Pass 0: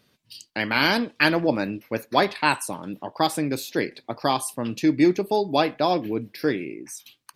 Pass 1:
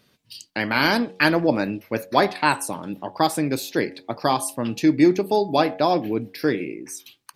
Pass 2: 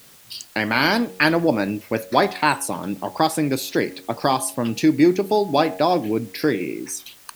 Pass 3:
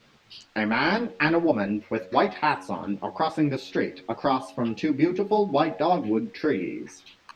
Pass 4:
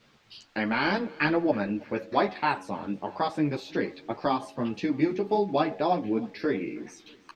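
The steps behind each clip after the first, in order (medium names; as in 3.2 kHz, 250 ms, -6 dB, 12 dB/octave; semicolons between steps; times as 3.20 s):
de-hum 92.62 Hz, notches 9; dynamic bell 3 kHz, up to -5 dB, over -35 dBFS, Q 1.3; trim +2.5 dB
in parallel at +1.5 dB: compression, threshold -29 dBFS, peak gain reduction 17 dB; on the sum: word length cut 8-bit, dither triangular; trim -1 dB
distance through air 200 m; three-phase chorus
feedback delay 319 ms, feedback 50%, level -23.5 dB; trim -3 dB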